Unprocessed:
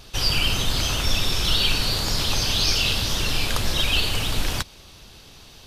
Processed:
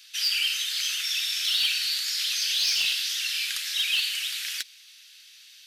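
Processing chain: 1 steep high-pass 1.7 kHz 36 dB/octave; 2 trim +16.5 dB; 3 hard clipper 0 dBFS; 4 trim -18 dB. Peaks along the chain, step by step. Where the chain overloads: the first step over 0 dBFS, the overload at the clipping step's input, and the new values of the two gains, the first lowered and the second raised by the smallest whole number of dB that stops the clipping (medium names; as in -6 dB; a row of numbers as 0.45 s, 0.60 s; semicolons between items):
-10.0 dBFS, +6.5 dBFS, 0.0 dBFS, -18.0 dBFS; step 2, 6.5 dB; step 2 +9.5 dB, step 4 -11 dB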